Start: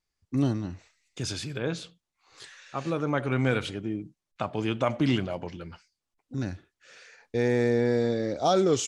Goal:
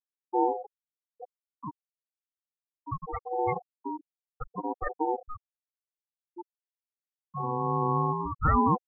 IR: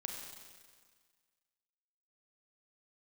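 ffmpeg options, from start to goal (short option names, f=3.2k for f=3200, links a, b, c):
-af "aphaser=in_gain=1:out_gain=1:delay=3:decay=0.33:speed=0.24:type=sinusoidal,aeval=exprs='val(0)*sin(2*PI*620*n/s)':c=same,afftfilt=real='re*gte(hypot(re,im),0.158)':imag='im*gte(hypot(re,im),0.158)':win_size=1024:overlap=0.75"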